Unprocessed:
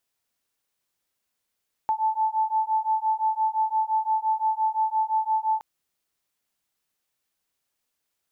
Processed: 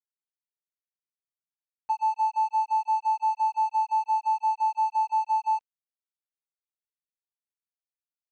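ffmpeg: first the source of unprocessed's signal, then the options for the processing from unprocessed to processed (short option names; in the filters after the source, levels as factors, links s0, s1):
-f lavfi -i "aevalsrc='0.0596*(sin(2*PI*873*t)+sin(2*PI*878.8*t))':d=3.72:s=44100"
-af "agate=range=0.2:threshold=0.0501:ratio=16:detection=peak,aresample=16000,aeval=exprs='sgn(val(0))*max(abs(val(0))-0.00531,0)':c=same,aresample=44100"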